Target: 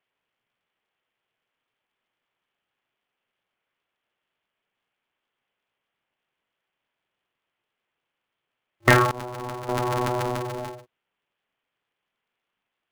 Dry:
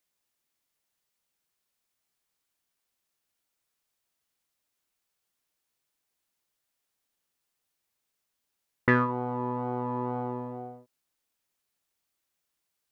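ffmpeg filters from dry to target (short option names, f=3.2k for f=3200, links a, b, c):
-filter_complex "[0:a]asettb=1/sr,asplit=3[a][b][c];[a]atrim=end=9.114[d];[b]atrim=start=9.11:end=9.69,asetpts=PTS-STARTPTS,afade=t=in:d=0.004:c=qsin,afade=t=out:st=0.576:d=0.004:c=qsin,agate=range=-33dB:threshold=-23dB:ratio=3:detection=peak[e];[c]atrim=start=9.686[f];[d][e]acrossfade=d=0.004:c1=hsin:c2=qsin[g];[g][f]acrossfade=d=0.004:c1=qsin:c2=hsin,afftfilt=real='re*between(b*sr/4096,220,3400)':imag='im*between(b*sr/4096,220,3400)':win_size=4096:overlap=0.75,aeval=exprs='val(0)*sgn(sin(2*PI*120*n/s))':c=same,volume=7dB"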